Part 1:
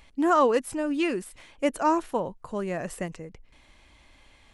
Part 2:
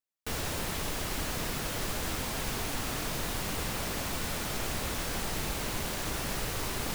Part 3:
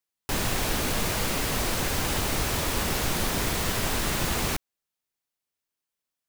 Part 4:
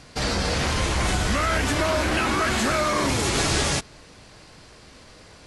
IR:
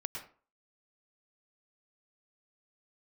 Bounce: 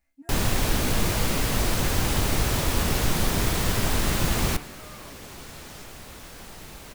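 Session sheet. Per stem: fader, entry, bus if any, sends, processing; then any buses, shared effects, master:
-10.5 dB, 0.00 s, no send, static phaser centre 680 Hz, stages 8; resonator arpeggio 4.5 Hz 67–590 Hz
-9.0 dB, 1.25 s, no send, none
+0.5 dB, 0.00 s, no send, bass shelf 250 Hz +6.5 dB; de-hum 73.15 Hz, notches 40
-17.0 dB, 2.05 s, no send, compression, threshold -28 dBFS, peak gain reduction 9.5 dB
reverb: none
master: none

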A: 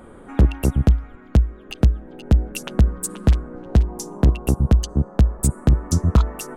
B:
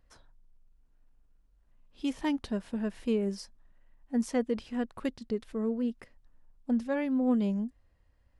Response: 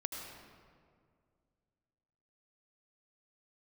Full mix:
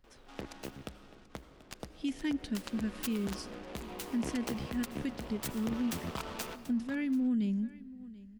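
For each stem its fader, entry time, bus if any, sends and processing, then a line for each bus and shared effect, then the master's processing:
2.29 s -15.5 dB -> 3.07 s -7.5 dB, 0.00 s, send -9.5 dB, echo send -17 dB, gate with hold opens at -35 dBFS; frequency weighting A; delay time shaken by noise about 1.6 kHz, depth 0.099 ms
-1.5 dB, 0.00 s, send -20 dB, echo send -20 dB, high-order bell 740 Hz -14.5 dB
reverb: on, RT60 2.1 s, pre-delay 72 ms
echo: delay 735 ms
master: peak limiter -25.5 dBFS, peak gain reduction 10.5 dB

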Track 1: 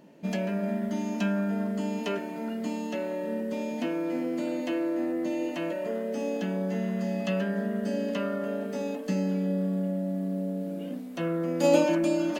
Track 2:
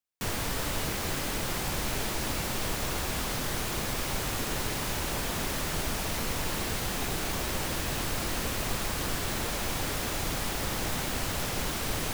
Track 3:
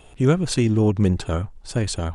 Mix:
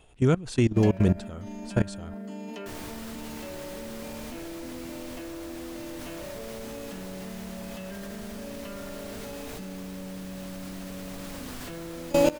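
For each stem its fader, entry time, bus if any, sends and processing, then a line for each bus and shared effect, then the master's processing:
+1.5 dB, 0.50 s, no send, none
-2.0 dB, 2.45 s, no send, none
-0.5 dB, 0.00 s, no send, none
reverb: none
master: level held to a coarse grid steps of 19 dB

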